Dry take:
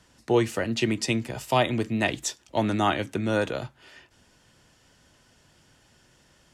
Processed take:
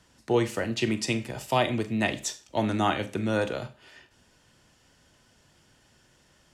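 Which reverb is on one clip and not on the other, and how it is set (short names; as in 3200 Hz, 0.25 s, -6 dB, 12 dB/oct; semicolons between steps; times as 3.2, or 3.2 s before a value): Schroeder reverb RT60 0.34 s, combs from 29 ms, DRR 11 dB; gain -2 dB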